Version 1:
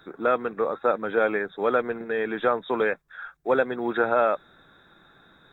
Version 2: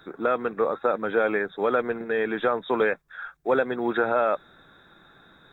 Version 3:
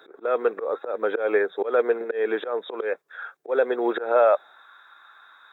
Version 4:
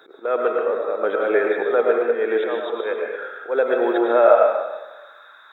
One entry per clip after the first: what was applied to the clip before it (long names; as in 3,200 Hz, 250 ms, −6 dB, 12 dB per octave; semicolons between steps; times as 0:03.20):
brickwall limiter −13.5 dBFS, peak gain reduction 4 dB; level +1.5 dB
volume swells 186 ms; high-pass filter sweep 440 Hz → 1,100 Hz, 0:04.14–0:04.67
convolution reverb RT60 1.1 s, pre-delay 70 ms, DRR 0 dB; level +1.5 dB